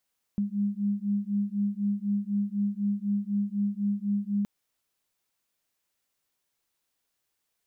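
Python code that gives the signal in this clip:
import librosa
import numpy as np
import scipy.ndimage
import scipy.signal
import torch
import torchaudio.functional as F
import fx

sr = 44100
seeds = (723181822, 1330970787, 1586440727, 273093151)

y = fx.two_tone_beats(sr, length_s=4.07, hz=201.0, beat_hz=4.0, level_db=-28.5)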